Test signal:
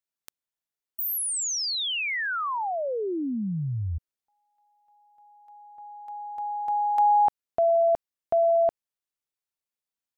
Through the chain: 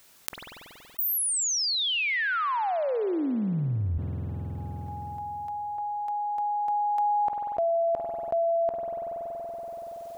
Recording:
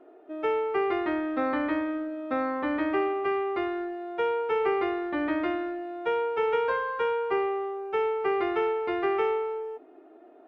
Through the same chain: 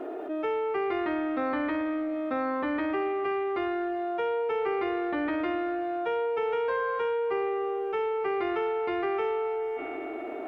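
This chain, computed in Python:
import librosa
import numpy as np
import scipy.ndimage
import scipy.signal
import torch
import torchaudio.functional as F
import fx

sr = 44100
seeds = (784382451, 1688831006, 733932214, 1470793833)

y = fx.rev_spring(x, sr, rt60_s=3.0, pass_ms=(47,), chirp_ms=25, drr_db=14.5)
y = fx.env_flatten(y, sr, amount_pct=70)
y = F.gain(torch.from_numpy(y), -5.0).numpy()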